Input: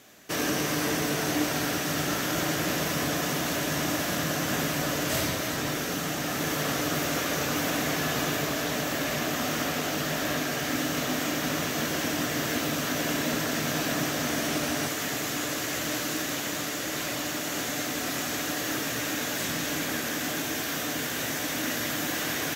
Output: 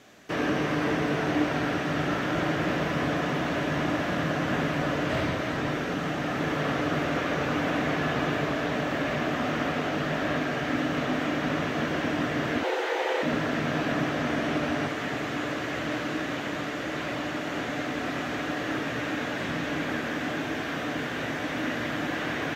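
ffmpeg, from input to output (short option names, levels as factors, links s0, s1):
-filter_complex "[0:a]aemphasis=mode=reproduction:type=50fm,acrossover=split=3500[s0][s1];[s1]acompressor=threshold=0.002:ratio=4:attack=1:release=60[s2];[s0][s2]amix=inputs=2:normalize=0,asettb=1/sr,asplit=3[s3][s4][s5];[s3]atrim=end=12.634[s6];[s4]atrim=start=12.63:end=13.23,asetpts=PTS-STARTPTS,afade=t=in:d=0.004:c=qsin,afade=t=out:st=0.596:d=0.004:c=qsin,afreqshift=220[s7];[s5]atrim=start=13.226[s8];[s6][s7]acrossfade=d=0.004:c1=hsin:c2=qsin[s9];[s9][s8]acrossfade=d=0.004:c1=qsin:c2=hsin,volume=1.26"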